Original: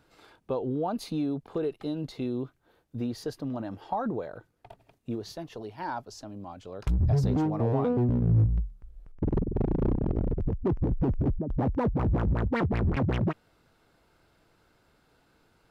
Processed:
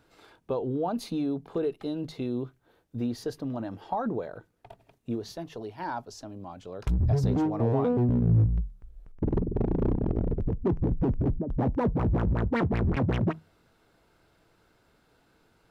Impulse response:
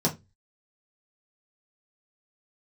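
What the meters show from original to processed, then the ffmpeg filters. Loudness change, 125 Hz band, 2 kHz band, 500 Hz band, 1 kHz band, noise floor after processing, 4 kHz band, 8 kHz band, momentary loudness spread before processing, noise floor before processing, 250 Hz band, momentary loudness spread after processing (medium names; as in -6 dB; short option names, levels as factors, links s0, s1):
+0.5 dB, 0.0 dB, +0.5 dB, +1.0 dB, 0.0 dB, -66 dBFS, 0.0 dB, no reading, 15 LU, -67 dBFS, +1.0 dB, 15 LU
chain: -filter_complex "[0:a]asplit=2[s0][s1];[1:a]atrim=start_sample=2205[s2];[s1][s2]afir=irnorm=-1:irlink=0,volume=0.0299[s3];[s0][s3]amix=inputs=2:normalize=0"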